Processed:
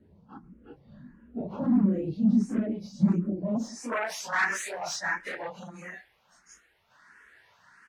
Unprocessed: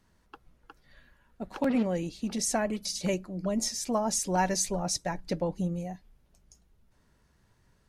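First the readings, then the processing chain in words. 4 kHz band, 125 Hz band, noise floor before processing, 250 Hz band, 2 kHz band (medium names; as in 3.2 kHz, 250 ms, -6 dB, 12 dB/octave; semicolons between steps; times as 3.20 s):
-5.5 dB, +3.0 dB, -68 dBFS, +5.0 dB, +9.0 dB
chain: phase randomisation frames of 100 ms; sine folder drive 12 dB, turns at -13 dBFS; compression 4:1, threshold -24 dBFS, peak gain reduction 8 dB; band-pass sweep 210 Hz -> 1.7 kHz, 3.46–4.12 s; treble shelf 9 kHz +10 dB; speakerphone echo 110 ms, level -25 dB; barber-pole phaser +1.5 Hz; trim +8 dB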